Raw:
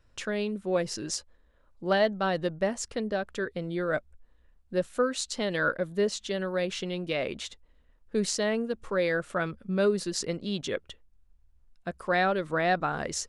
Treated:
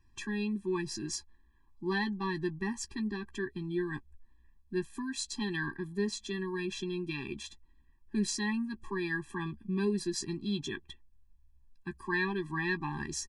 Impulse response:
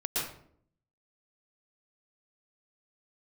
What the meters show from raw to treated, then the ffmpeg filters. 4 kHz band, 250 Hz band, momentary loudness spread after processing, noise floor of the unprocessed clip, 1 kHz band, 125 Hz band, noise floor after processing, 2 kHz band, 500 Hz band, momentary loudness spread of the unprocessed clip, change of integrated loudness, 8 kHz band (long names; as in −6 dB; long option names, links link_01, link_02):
−5.0 dB, −1.0 dB, 9 LU, −63 dBFS, −10.0 dB, −2.0 dB, −63 dBFS, −4.5 dB, −10.0 dB, 8 LU, −5.5 dB, −4.5 dB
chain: -filter_complex "[0:a]asplit=2[link_01][link_02];[link_02]adelay=14,volume=-12dB[link_03];[link_01][link_03]amix=inputs=2:normalize=0,afftfilt=real='re*eq(mod(floor(b*sr/1024/390),2),0)':imag='im*eq(mod(floor(b*sr/1024/390),2),0)':win_size=1024:overlap=0.75,volume=-1.5dB"